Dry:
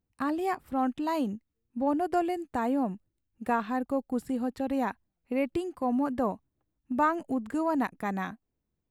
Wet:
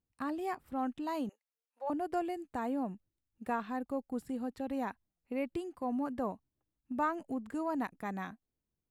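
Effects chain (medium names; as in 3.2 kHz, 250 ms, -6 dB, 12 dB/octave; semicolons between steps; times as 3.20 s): 1.29–1.90 s: steep high-pass 520 Hz 36 dB/octave; trim -7 dB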